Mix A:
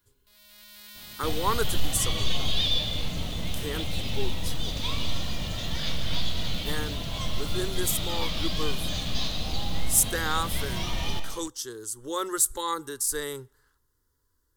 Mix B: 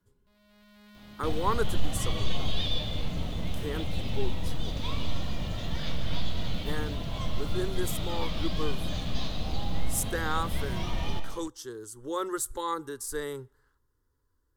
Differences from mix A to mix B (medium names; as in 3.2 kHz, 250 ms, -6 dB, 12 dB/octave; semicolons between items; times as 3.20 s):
first sound: add tilt EQ -3.5 dB/octave; master: add treble shelf 2.5 kHz -11 dB